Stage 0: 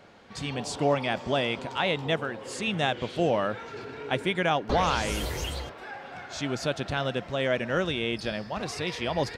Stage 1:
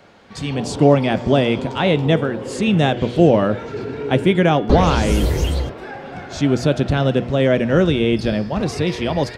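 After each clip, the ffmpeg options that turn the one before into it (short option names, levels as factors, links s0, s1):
-filter_complex "[0:a]bandreject=f=121.1:t=h:w=4,bandreject=f=242.2:t=h:w=4,bandreject=f=363.3:t=h:w=4,bandreject=f=484.4:t=h:w=4,bandreject=f=605.5:t=h:w=4,bandreject=f=726.6:t=h:w=4,bandreject=f=847.7:t=h:w=4,bandreject=f=968.8:t=h:w=4,bandreject=f=1089.9:t=h:w=4,bandreject=f=1211:t=h:w=4,bandreject=f=1332.1:t=h:w=4,bandreject=f=1453.2:t=h:w=4,bandreject=f=1574.3:t=h:w=4,bandreject=f=1695.4:t=h:w=4,bandreject=f=1816.5:t=h:w=4,bandreject=f=1937.6:t=h:w=4,bandreject=f=2058.7:t=h:w=4,bandreject=f=2179.8:t=h:w=4,bandreject=f=2300.9:t=h:w=4,bandreject=f=2422:t=h:w=4,bandreject=f=2543.1:t=h:w=4,bandreject=f=2664.2:t=h:w=4,bandreject=f=2785.3:t=h:w=4,bandreject=f=2906.4:t=h:w=4,bandreject=f=3027.5:t=h:w=4,bandreject=f=3148.6:t=h:w=4,bandreject=f=3269.7:t=h:w=4,bandreject=f=3390.8:t=h:w=4,bandreject=f=3511.9:t=h:w=4,acrossover=split=480|1300[s0][s1][s2];[s0]dynaudnorm=f=220:g=5:m=3.55[s3];[s3][s1][s2]amix=inputs=3:normalize=0,volume=1.78"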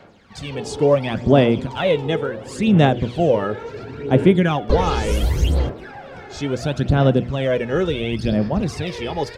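-af "aphaser=in_gain=1:out_gain=1:delay=2.4:decay=0.59:speed=0.71:type=sinusoidal,volume=0.562"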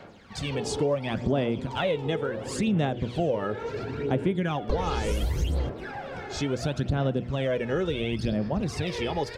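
-af "acompressor=threshold=0.0501:ratio=3"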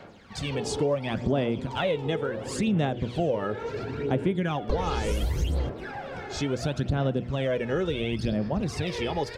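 -af anull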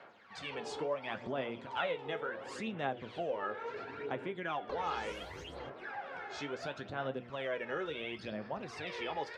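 -af "flanger=delay=7.2:depth=6.6:regen=63:speed=0.7:shape=triangular,bandpass=f=1400:t=q:w=0.8:csg=0,volume=1.12"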